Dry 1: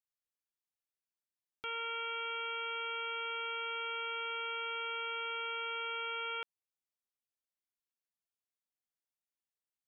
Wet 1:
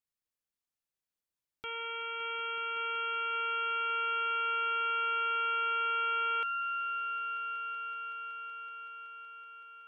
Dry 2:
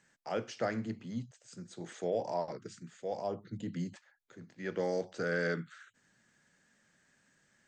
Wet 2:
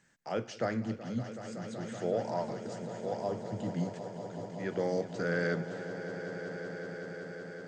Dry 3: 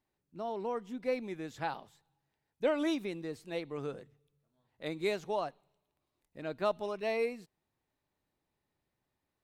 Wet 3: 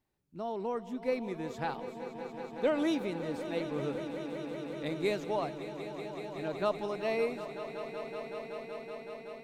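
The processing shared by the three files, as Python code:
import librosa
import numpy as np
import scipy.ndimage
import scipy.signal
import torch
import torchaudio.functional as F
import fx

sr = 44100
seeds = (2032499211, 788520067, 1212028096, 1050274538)

y = fx.low_shelf(x, sr, hz=240.0, db=5.0)
y = fx.echo_swell(y, sr, ms=188, loudest=5, wet_db=-13.5)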